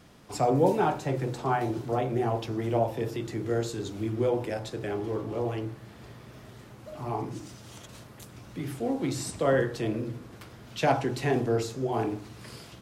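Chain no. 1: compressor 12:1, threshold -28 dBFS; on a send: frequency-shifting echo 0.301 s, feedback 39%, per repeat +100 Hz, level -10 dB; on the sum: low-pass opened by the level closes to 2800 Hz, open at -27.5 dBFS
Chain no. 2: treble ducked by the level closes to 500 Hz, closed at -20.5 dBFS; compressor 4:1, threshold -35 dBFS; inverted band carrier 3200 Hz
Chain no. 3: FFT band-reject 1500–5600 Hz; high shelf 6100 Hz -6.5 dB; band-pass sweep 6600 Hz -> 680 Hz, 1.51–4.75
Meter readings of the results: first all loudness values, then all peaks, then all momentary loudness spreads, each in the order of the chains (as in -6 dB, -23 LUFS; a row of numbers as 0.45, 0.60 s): -34.5, -35.5, -37.0 LUFS; -19.0, -22.5, -14.5 dBFS; 13, 11, 24 LU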